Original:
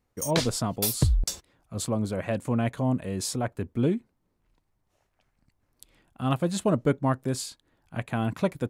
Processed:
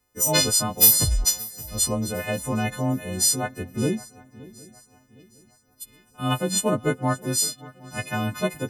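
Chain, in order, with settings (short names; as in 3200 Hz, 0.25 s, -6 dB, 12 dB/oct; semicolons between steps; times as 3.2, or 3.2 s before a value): frequency quantiser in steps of 3 st; swung echo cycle 0.762 s, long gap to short 3:1, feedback 37%, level -20.5 dB; gain +1 dB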